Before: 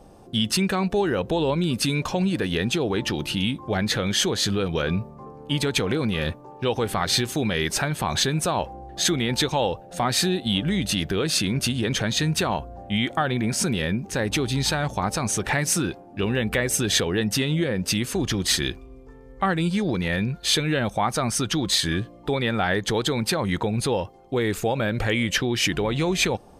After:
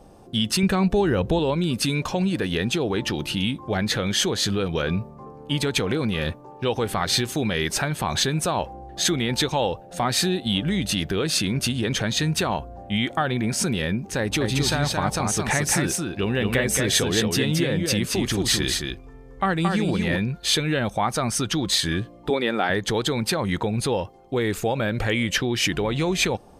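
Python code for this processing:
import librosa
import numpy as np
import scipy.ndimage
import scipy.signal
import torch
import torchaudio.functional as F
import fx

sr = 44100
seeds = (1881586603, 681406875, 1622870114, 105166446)

y = fx.low_shelf(x, sr, hz=160.0, db=11.0, at=(0.63, 1.39))
y = fx.echo_single(y, sr, ms=223, db=-4.0, at=(14.4, 20.16), fade=0.02)
y = fx.highpass_res(y, sr, hz=300.0, q=1.5, at=(22.3, 22.7))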